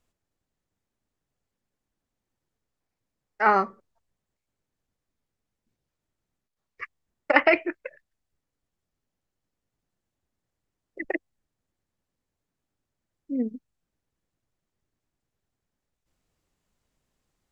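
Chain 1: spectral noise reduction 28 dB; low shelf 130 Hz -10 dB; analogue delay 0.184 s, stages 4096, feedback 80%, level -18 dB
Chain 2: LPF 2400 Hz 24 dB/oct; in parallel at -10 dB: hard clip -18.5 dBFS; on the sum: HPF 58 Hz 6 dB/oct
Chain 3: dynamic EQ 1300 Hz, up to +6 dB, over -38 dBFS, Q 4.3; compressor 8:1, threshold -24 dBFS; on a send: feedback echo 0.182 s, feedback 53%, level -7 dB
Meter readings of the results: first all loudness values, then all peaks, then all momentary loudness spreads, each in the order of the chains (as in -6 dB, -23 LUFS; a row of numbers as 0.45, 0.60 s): -27.0, -23.5, -33.0 LUFS; -2.5, -2.5, -11.5 dBFS; 24, 21, 21 LU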